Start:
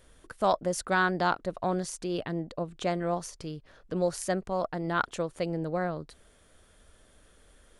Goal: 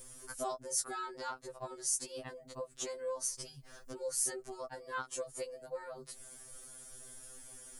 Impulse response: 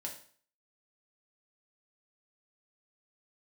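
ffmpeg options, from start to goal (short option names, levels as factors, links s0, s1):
-af "acompressor=threshold=0.00562:ratio=2.5,aexciter=amount=3.4:drive=8:freq=5100,afftfilt=real='re*2.45*eq(mod(b,6),0)':imag='im*2.45*eq(mod(b,6),0)':win_size=2048:overlap=0.75,volume=1.5"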